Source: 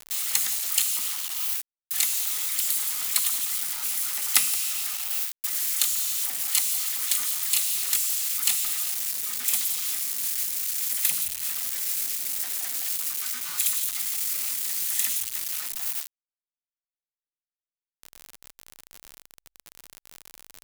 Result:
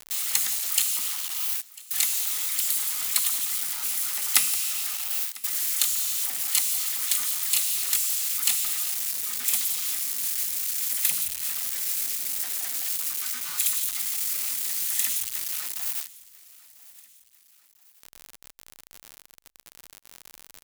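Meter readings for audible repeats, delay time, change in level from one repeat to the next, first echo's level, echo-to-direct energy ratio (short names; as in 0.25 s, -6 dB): 2, 0.997 s, -6.0 dB, -21.5 dB, -20.5 dB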